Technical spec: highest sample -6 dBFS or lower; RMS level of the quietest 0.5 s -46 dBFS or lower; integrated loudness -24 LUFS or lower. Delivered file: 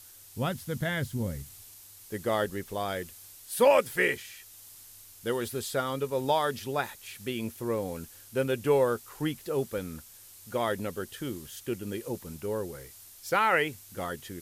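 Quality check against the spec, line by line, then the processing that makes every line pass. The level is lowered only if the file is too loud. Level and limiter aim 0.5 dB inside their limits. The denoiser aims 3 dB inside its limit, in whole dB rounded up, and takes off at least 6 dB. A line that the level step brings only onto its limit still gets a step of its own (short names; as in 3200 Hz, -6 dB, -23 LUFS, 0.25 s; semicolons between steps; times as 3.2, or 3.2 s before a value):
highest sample -11.0 dBFS: OK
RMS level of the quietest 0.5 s -51 dBFS: OK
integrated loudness -30.5 LUFS: OK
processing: none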